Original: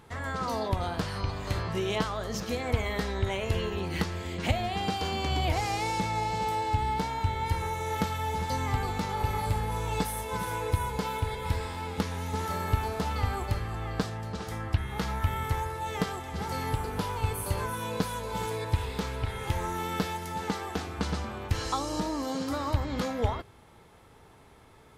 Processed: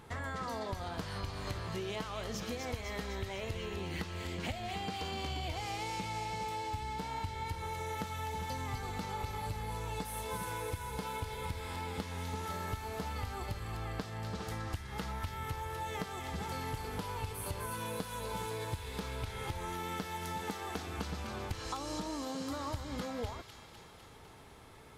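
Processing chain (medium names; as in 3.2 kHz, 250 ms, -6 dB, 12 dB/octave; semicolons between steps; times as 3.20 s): compression, threshold -36 dBFS, peak gain reduction 16 dB; feedback echo behind a high-pass 252 ms, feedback 66%, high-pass 2.1 kHz, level -4 dB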